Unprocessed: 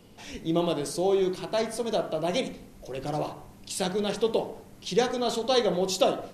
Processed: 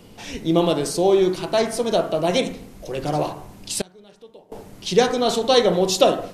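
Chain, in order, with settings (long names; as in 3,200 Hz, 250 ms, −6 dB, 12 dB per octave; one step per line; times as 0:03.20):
0:03.81–0:04.52: gate with flip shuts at −26 dBFS, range −27 dB
level +7.5 dB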